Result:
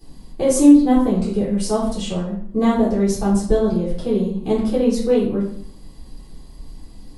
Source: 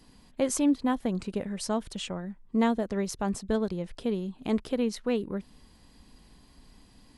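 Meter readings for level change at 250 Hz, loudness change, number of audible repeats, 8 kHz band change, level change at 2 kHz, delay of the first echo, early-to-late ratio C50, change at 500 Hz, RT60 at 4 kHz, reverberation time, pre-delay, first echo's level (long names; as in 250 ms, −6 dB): +12.5 dB, +12.0 dB, no echo audible, +8.0 dB, +3.5 dB, no echo audible, 3.5 dB, +11.5 dB, 0.45 s, 0.60 s, 3 ms, no echo audible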